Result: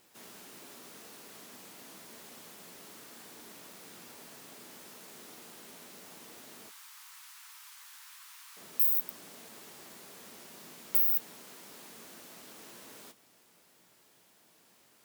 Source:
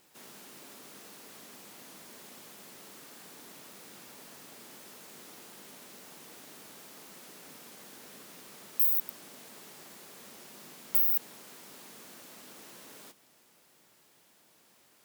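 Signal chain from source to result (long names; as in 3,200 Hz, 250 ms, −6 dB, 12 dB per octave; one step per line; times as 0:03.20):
0:06.69–0:08.57: Butterworth high-pass 930 Hz 48 dB per octave
flanger 0.31 Hz, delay 8.2 ms, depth 8 ms, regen −61%
on a send: convolution reverb, pre-delay 3 ms, DRR 21 dB
on the sum: level +4 dB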